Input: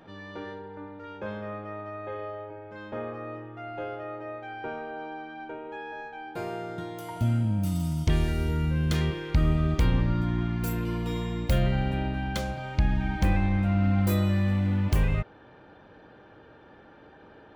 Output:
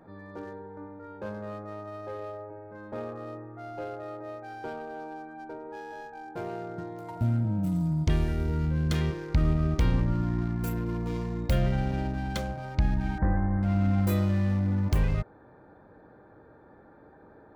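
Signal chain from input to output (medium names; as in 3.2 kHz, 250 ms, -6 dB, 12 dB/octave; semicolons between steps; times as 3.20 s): local Wiener filter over 15 samples; 7.44–8.06 s: comb 6.2 ms, depth 58%; 13.18–13.63 s: elliptic low-pass 1.8 kHz, stop band 40 dB; trim -1 dB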